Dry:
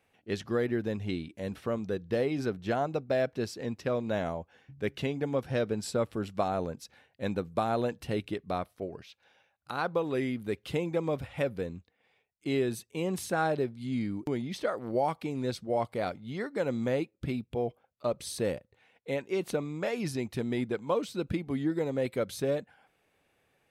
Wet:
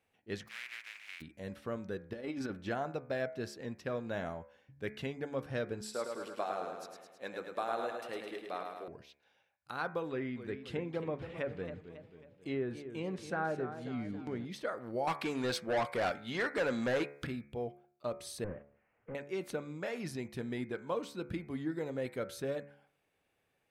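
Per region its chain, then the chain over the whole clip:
0.47–1.2 spectral contrast lowered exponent 0.15 + band-pass 2300 Hz, Q 4.1
2.13–2.69 Bessel low-pass 11000 Hz + comb 3.5 ms, depth 48% + negative-ratio compressor -31 dBFS, ratio -0.5
5.81–8.88 HPF 400 Hz + feedback echo 0.106 s, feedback 59%, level -5 dB
10.09–14.45 treble ducked by the level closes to 1700 Hz, closed at -24.5 dBFS + warbling echo 0.271 s, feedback 51%, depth 121 cents, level -10.5 dB
15.07–17.27 overdrive pedal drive 21 dB, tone 7100 Hz, clips at -17.5 dBFS + mismatched tape noise reduction encoder only
18.44–19.15 delta modulation 16 kbps, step -48.5 dBFS + gate -50 dBFS, range -13 dB + LPF 2200 Hz 24 dB/oct
whole clip: de-hum 71.4 Hz, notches 35; dynamic EQ 1600 Hz, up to +5 dB, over -53 dBFS, Q 1.9; gain -7 dB

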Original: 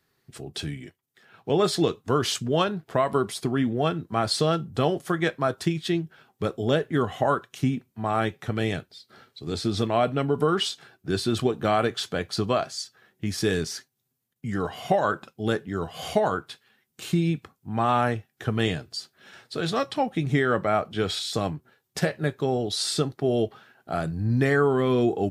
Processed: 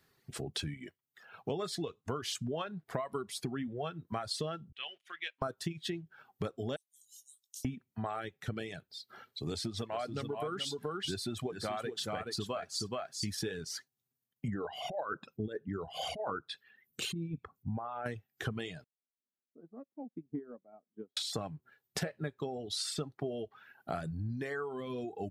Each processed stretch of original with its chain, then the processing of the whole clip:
4.72–5.42 G.711 law mismatch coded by A + band-pass 2800 Hz, Q 4
6.76–7.65 inverse Chebyshev high-pass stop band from 1700 Hz, stop band 60 dB + doubler 19 ms -6.5 dB
9.49–13.35 high shelf 5200 Hz +4.5 dB + echo 0.426 s -4.5 dB
14.48–18.06 formant sharpening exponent 1.5 + negative-ratio compressor -26 dBFS, ratio -0.5
18.84–21.17 ladder band-pass 290 Hz, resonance 50% + upward expander 2.5:1, over -45 dBFS
whole clip: compressor 5:1, threshold -35 dBFS; bell 330 Hz -2.5 dB 0.26 oct; reverb removal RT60 1.6 s; gain +1 dB

